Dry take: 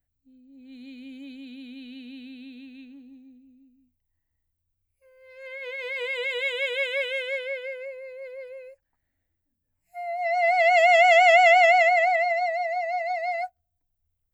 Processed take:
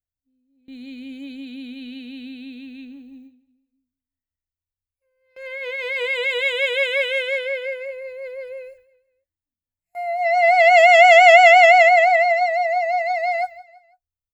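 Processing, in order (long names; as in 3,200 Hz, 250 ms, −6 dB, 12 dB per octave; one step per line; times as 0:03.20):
noise gate with hold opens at −43 dBFS
repeating echo 166 ms, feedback 42%, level −19 dB
level +6.5 dB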